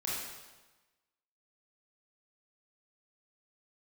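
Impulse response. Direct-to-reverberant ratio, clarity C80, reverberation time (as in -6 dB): -7.0 dB, 1.5 dB, 1.2 s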